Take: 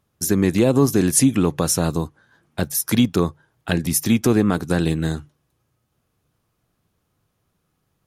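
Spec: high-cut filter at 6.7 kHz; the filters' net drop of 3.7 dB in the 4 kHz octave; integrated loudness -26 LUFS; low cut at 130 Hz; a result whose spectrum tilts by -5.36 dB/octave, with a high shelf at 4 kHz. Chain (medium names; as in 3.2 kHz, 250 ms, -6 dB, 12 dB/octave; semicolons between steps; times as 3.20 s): high-pass 130 Hz; low-pass 6.7 kHz; treble shelf 4 kHz +6 dB; peaking EQ 4 kHz -8.5 dB; trim -5.5 dB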